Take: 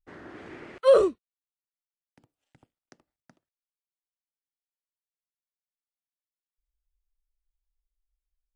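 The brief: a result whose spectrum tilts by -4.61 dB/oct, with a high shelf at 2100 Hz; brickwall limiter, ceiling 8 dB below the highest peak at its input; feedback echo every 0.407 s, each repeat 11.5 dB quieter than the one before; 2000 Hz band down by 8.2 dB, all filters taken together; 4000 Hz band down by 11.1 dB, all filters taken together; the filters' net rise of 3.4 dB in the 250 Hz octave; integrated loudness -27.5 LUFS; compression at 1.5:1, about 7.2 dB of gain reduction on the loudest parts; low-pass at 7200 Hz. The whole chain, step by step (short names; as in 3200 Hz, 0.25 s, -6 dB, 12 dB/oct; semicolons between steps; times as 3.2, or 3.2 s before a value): LPF 7200 Hz; bell 250 Hz +7 dB; bell 2000 Hz -8.5 dB; high shelf 2100 Hz -4 dB; bell 4000 Hz -7 dB; compressor 1.5:1, threshold -33 dBFS; limiter -24.5 dBFS; feedback echo 0.407 s, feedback 27%, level -11.5 dB; gain +9 dB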